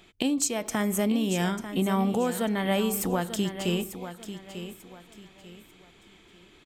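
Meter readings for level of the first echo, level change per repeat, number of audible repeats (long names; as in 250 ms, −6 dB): −11.0 dB, −10.0 dB, 3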